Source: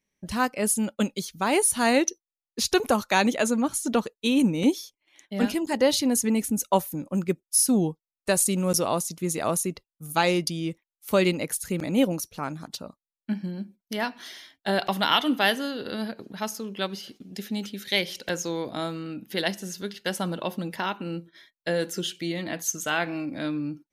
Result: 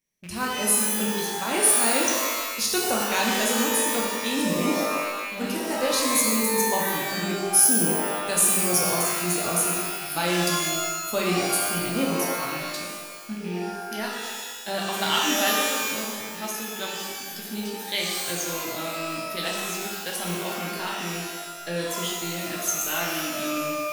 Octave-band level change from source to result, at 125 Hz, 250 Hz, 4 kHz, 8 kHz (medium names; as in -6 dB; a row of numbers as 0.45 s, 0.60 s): -2.0 dB, -3.0 dB, +3.0 dB, +6.0 dB